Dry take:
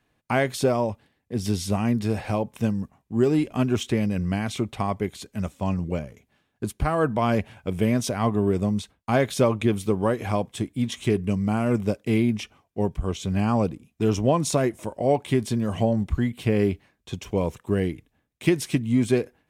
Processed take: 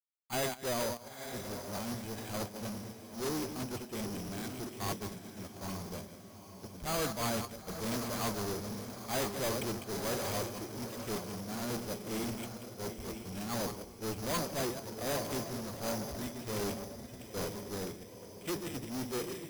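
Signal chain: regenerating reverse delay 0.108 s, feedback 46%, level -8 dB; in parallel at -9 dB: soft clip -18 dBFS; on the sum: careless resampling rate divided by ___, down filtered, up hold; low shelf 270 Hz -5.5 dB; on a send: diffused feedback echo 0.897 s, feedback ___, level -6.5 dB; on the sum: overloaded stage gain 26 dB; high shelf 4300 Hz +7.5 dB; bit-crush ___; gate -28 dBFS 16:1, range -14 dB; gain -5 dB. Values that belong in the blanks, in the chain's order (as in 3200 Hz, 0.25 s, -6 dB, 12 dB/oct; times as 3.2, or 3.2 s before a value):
8×, 48%, 7-bit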